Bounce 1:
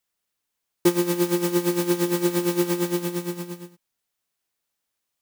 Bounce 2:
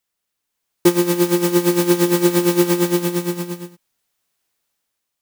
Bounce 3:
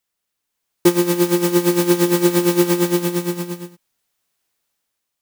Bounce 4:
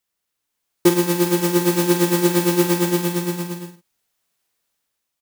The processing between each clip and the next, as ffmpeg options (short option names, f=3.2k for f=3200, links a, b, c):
-af "dynaudnorm=f=170:g=7:m=6dB,volume=1.5dB"
-af anull
-filter_complex "[0:a]asplit=2[a][b];[b]adelay=47,volume=-7.5dB[c];[a][c]amix=inputs=2:normalize=0,volume=-1dB"